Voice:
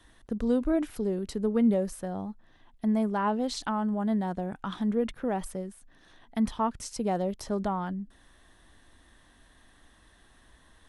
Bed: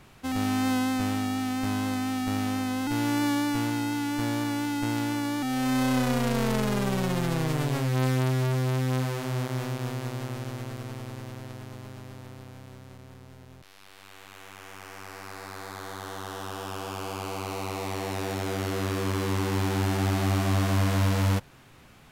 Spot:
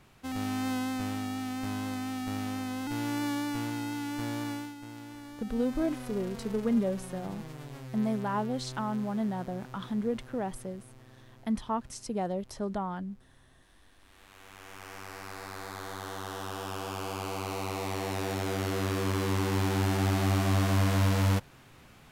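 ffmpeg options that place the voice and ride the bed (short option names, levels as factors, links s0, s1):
-filter_complex "[0:a]adelay=5100,volume=0.668[s0];[1:a]volume=2.82,afade=t=out:st=4.51:d=0.24:silence=0.298538,afade=t=in:st=13.98:d=0.93:silence=0.177828[s1];[s0][s1]amix=inputs=2:normalize=0"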